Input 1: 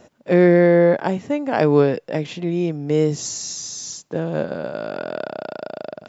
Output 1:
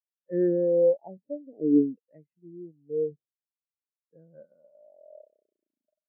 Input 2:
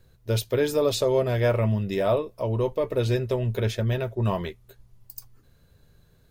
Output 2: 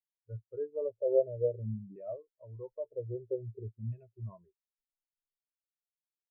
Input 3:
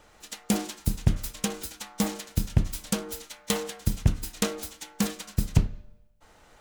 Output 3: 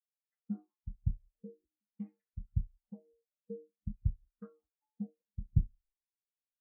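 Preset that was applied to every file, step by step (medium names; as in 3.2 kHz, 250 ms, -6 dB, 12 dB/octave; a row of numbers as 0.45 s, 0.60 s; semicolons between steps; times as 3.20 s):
LFO low-pass saw down 0.51 Hz 250–2700 Hz; spectral contrast expander 2.5:1; trim -8.5 dB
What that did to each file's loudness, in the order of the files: -6.0 LU, -11.0 LU, -11.0 LU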